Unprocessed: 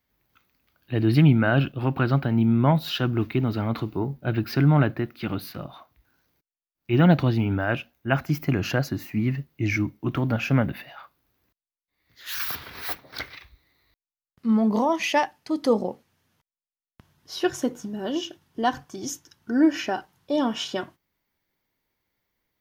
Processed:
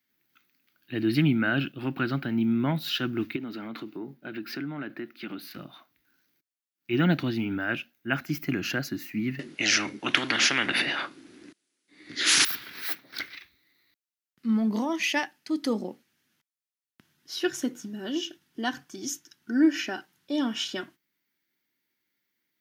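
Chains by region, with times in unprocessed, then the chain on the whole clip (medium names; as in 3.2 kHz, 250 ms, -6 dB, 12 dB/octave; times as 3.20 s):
3.36–5.51 s: high-pass 210 Hz + treble shelf 3.8 kHz -6 dB + compression 2.5:1, threshold -29 dBFS
9.39–12.45 s: brick-wall FIR low-pass 11 kHz + peaking EQ 320 Hz +13.5 dB 1.5 oct + spectrum-flattening compressor 10:1
whole clip: high-pass 240 Hz 12 dB/octave; high-order bell 700 Hz -10 dB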